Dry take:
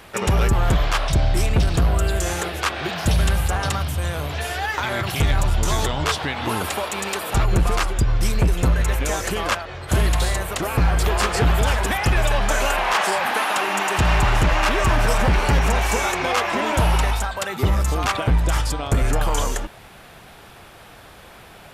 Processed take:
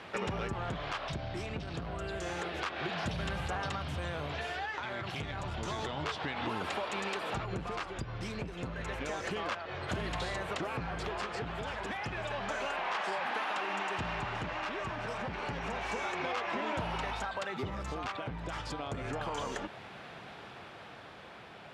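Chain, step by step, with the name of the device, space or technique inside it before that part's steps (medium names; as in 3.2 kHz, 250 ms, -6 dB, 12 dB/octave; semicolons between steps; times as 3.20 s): AM radio (band-pass 120–4100 Hz; compression, threshold -29 dBFS, peak gain reduction 13 dB; saturation -20 dBFS, distortion -24 dB; tremolo 0.3 Hz, depth 30%); trim -2.5 dB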